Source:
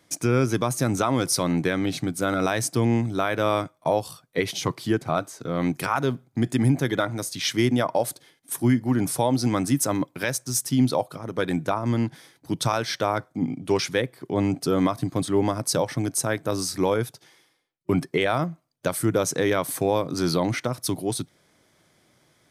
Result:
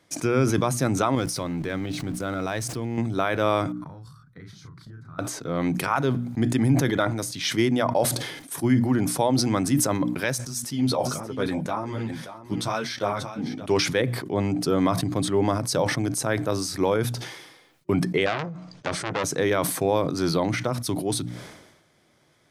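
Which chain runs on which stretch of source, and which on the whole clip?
1.15–2.98 zero-crossing step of -37 dBFS + low shelf 73 Hz +10 dB + level quantiser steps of 14 dB
3.72–5.19 EQ curve 140 Hz 0 dB, 660 Hz -29 dB, 1400 Hz -5 dB, 2800 Hz -29 dB, 4000 Hz -18 dB, 13000 Hz -24 dB + compressor 10:1, threshold -39 dBFS + doubler 35 ms -5 dB
10.47–13.66 echo 0.579 s -13.5 dB + ensemble effect
18.26–19.24 LPF 6600 Hz 24 dB/oct + doubler 14 ms -11 dB + core saturation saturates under 2000 Hz
whole clip: high shelf 7200 Hz -6.5 dB; notches 60/120/180/240/300 Hz; sustainer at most 54 dB/s

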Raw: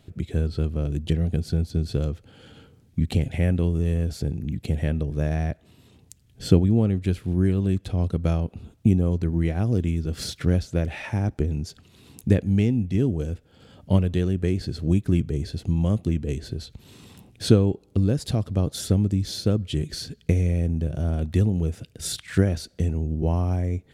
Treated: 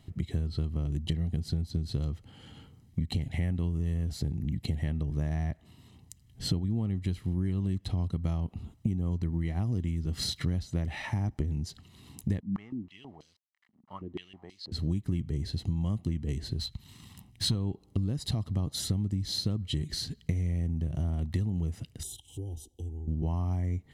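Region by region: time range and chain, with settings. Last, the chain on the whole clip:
12.4–14.72 sample gate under -43.5 dBFS + stepped band-pass 6.2 Hz 220–4400 Hz
16.59–17.55 bell 480 Hz -8.5 dB 1.7 oct + sample leveller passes 1
22.03–23.08 compressor 2.5:1, threshold -32 dBFS + Chebyshev band-stop 840–3100 Hz, order 4 + fixed phaser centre 930 Hz, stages 8
whole clip: dynamic EQ 4000 Hz, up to +7 dB, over -56 dBFS, Q 6; comb 1 ms, depth 53%; compressor 6:1, threshold -23 dBFS; gain -3.5 dB

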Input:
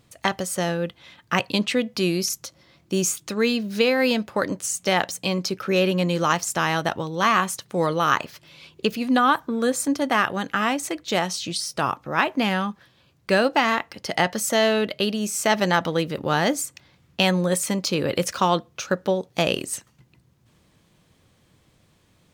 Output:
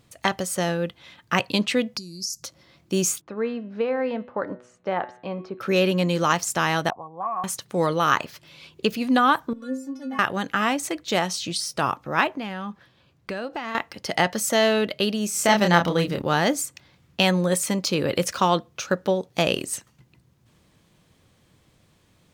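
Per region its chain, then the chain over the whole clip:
1.97–2.43 compressor 5:1, threshold -34 dBFS + EQ curve 210 Hz 0 dB, 660 Hz -18 dB, 3200 Hz -21 dB, 4700 Hz +11 dB, 14000 Hz -3 dB
3.21–5.61 LPF 1100 Hz + low shelf 310 Hz -10.5 dB + de-hum 123.5 Hz, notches 34
6.9–7.44 vocal tract filter a + low shelf 330 Hz +9.5 dB + three-band squash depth 40%
9.53–10.19 tilt -2.5 dB/oct + metallic resonator 260 Hz, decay 0.42 s, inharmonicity 0.008 + mismatched tape noise reduction encoder only
12.27–13.75 high shelf 4900 Hz -7.5 dB + compressor 5:1, threshold -28 dBFS
15.33–16.22 low shelf 150 Hz +5 dB + doubler 29 ms -4.5 dB
whole clip: dry

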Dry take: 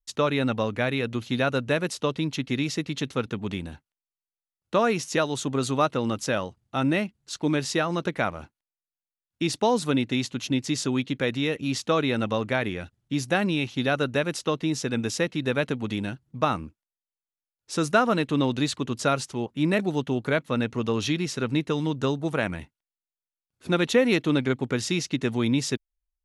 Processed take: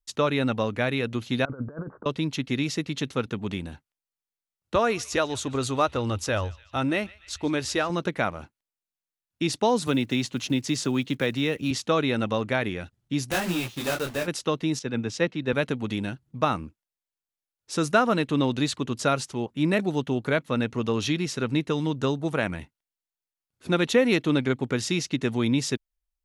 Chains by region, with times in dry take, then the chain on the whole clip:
1.45–2.06 rippled Chebyshev low-pass 1600 Hz, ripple 3 dB + negative-ratio compressor -33 dBFS, ratio -0.5
4.75–7.9 resonant low shelf 110 Hz +12.5 dB, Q 3 + narrowing echo 0.146 s, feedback 72%, band-pass 3000 Hz, level -19.5 dB
9.87–11.71 block floating point 7-bit + three-band squash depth 40%
13.31–14.28 block floating point 3-bit + detuned doubles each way 22 cents
14.79–15.53 air absorption 82 m + three-band expander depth 100%
whole clip: dry

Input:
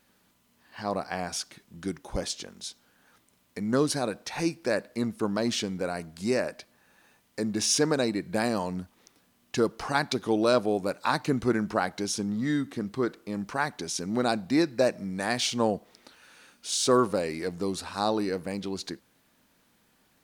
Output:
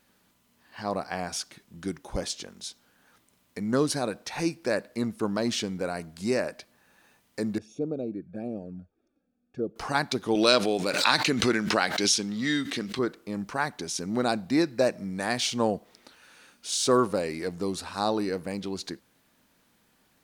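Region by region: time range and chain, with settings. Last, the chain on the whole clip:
7.58–9.76 low shelf 260 Hz -7 dB + envelope flanger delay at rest 4.1 ms, full sweep at -24 dBFS + running mean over 44 samples
10.35–12.99 weighting filter D + backwards sustainer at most 51 dB/s
whole clip: dry

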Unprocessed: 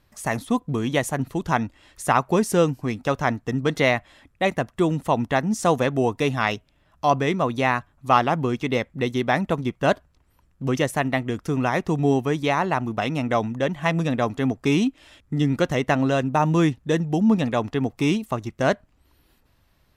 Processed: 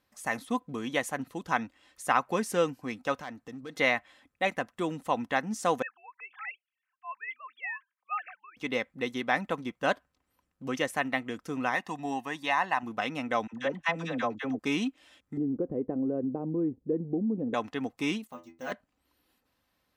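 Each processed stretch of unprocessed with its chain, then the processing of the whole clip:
3.14–3.76 compressor 2.5:1, threshold -30 dBFS + hard clip -25 dBFS
5.82–8.57 sine-wave speech + HPF 1500 Hz 24 dB/oct + tilt -4.5 dB/oct
11.75–12.83 HPF 390 Hz 6 dB/oct + comb 1.1 ms, depth 56%
13.47–14.59 LPF 6700 Hz + gate -33 dBFS, range -26 dB + dispersion lows, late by 56 ms, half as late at 700 Hz
15.37–17.54 tilt -1.5 dB/oct + compressor, threshold -19 dBFS + synth low-pass 400 Hz, resonance Q 3
18.27–18.72 careless resampling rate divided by 2×, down filtered, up hold + metallic resonator 82 Hz, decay 0.3 s, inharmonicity 0.002
whole clip: HPF 250 Hz 6 dB/oct; comb 3.9 ms, depth 34%; dynamic EQ 1800 Hz, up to +5 dB, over -36 dBFS, Q 0.75; gain -8.5 dB

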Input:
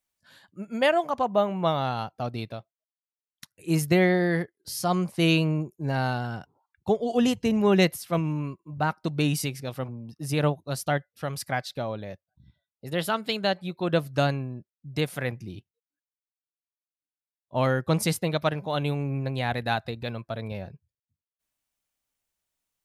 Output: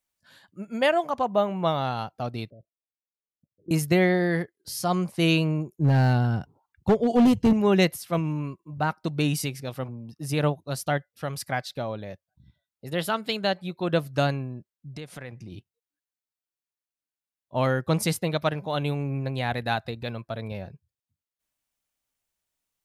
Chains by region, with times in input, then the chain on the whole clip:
2.5–3.71 steep low-pass 630 Hz 96 dB/oct + level quantiser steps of 16 dB
5.79–7.53 low shelf 340 Hz +11.5 dB + hard clip -14.5 dBFS
14.89–15.52 LPF 8800 Hz + compressor 4:1, threshold -36 dBFS
whole clip: dry

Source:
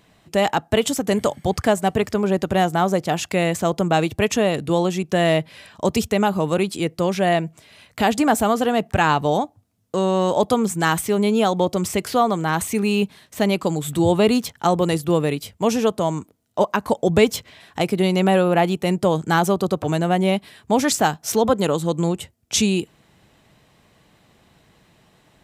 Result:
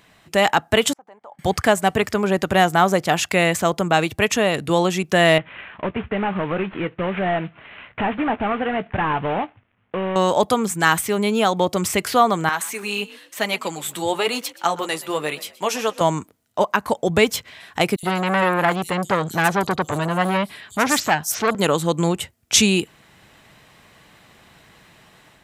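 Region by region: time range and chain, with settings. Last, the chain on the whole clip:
0.93–1.39 compressor 8:1, threshold -30 dBFS + band-pass 850 Hz, Q 3.4 + gate -53 dBFS, range -11 dB
5.38–10.16 CVSD 16 kbps + doubler 16 ms -14 dB + compressor 2:1, threshold -27 dBFS
12.49–16.01 flange 1 Hz, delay 3.4 ms, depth 7.2 ms, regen -34% + HPF 660 Hz 6 dB/oct + frequency-shifting echo 0.124 s, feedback 32%, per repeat +42 Hz, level -19 dB
17.96–21.55 bands offset in time highs, lows 70 ms, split 5300 Hz + core saturation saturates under 1300 Hz
whole clip: bell 1700 Hz +7.5 dB 2.1 oct; AGC gain up to 3.5 dB; high shelf 5700 Hz +6 dB; gain -1.5 dB

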